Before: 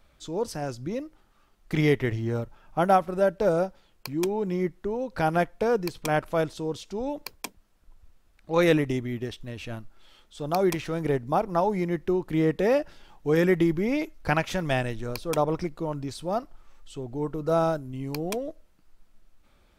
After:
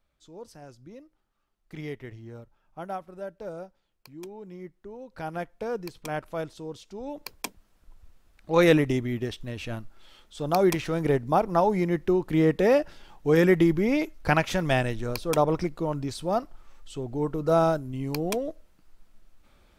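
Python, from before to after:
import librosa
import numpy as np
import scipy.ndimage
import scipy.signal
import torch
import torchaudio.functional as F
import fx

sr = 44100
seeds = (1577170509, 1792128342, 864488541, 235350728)

y = fx.gain(x, sr, db=fx.line((4.6, -14.5), (5.77, -7.0), (7.01, -7.0), (7.41, 2.0)))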